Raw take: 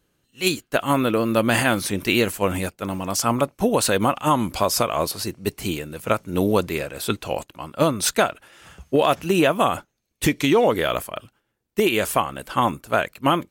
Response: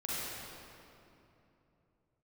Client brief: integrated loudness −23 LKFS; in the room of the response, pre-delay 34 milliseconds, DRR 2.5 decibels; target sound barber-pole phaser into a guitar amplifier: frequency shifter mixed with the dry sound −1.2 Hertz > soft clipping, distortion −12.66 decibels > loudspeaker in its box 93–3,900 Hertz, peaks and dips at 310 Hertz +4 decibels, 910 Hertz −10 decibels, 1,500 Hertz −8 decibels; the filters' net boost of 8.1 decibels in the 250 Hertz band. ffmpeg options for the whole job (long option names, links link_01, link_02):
-filter_complex "[0:a]equalizer=frequency=250:width_type=o:gain=8,asplit=2[link_01][link_02];[1:a]atrim=start_sample=2205,adelay=34[link_03];[link_02][link_03]afir=irnorm=-1:irlink=0,volume=-7.5dB[link_04];[link_01][link_04]amix=inputs=2:normalize=0,asplit=2[link_05][link_06];[link_06]afreqshift=-1.2[link_07];[link_05][link_07]amix=inputs=2:normalize=1,asoftclip=threshold=-15dB,highpass=93,equalizer=frequency=310:width_type=q:width=4:gain=4,equalizer=frequency=910:width_type=q:width=4:gain=-10,equalizer=frequency=1500:width_type=q:width=4:gain=-8,lowpass=frequency=3900:width=0.5412,lowpass=frequency=3900:width=1.3066,volume=-0.5dB"